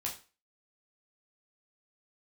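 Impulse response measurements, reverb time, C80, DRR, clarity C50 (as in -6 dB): 0.35 s, 15.0 dB, -3.0 dB, 10.0 dB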